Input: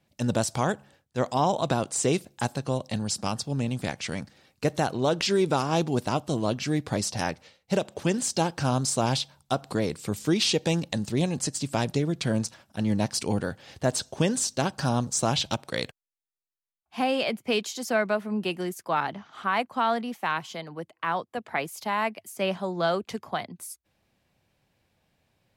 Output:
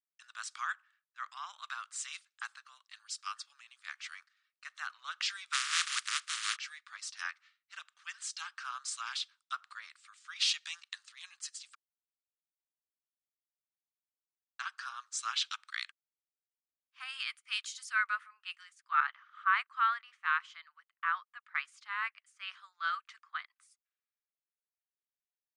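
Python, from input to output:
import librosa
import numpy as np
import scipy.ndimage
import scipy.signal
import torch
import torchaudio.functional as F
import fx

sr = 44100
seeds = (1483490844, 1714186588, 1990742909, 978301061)

y = fx.spec_flatten(x, sr, power=0.13, at=(5.52, 6.55), fade=0.02)
y = fx.peak_eq(y, sr, hz=11000.0, db=14.0, octaves=0.77, at=(17.0, 18.29))
y = fx.edit(y, sr, fx.silence(start_s=11.75, length_s=2.84), tone=tone)
y = scipy.signal.sosfilt(scipy.signal.cheby1(5, 1.0, [1200.0, 9500.0], 'bandpass', fs=sr, output='sos'), y)
y = fx.tilt_eq(y, sr, slope=-4.5)
y = fx.band_widen(y, sr, depth_pct=70)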